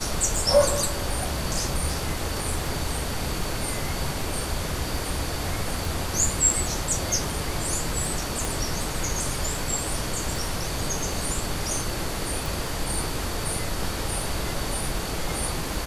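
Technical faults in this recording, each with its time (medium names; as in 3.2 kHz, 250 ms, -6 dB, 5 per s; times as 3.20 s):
tick 78 rpm
5.85 s: pop
8.45 s: pop
12.46 s: pop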